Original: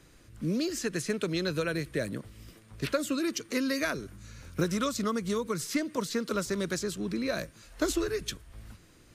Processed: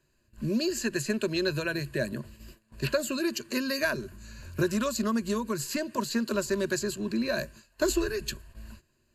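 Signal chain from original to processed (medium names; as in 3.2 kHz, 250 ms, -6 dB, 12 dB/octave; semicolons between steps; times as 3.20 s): rippled EQ curve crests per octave 1.4, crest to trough 12 dB; gate -48 dBFS, range -15 dB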